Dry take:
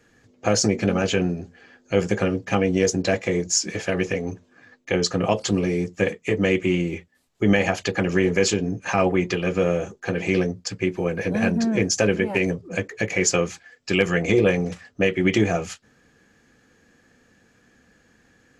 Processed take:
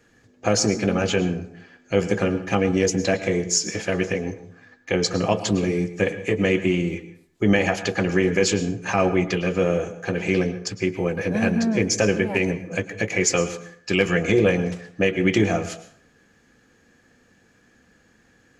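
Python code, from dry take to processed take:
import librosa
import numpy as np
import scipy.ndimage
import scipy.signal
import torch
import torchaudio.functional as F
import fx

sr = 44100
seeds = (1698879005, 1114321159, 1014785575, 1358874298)

y = fx.rev_plate(x, sr, seeds[0], rt60_s=0.58, hf_ratio=0.65, predelay_ms=95, drr_db=12.5)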